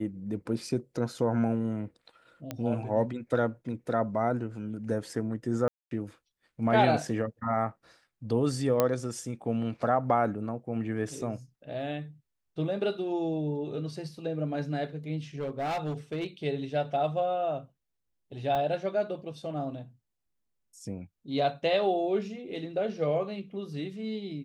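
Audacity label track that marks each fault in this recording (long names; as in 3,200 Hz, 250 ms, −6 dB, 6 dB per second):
2.510000	2.510000	click −19 dBFS
5.680000	5.910000	drop-out 232 ms
8.800000	8.800000	click −10 dBFS
15.390000	16.270000	clipping −28 dBFS
18.550000	18.550000	drop-out 3.9 ms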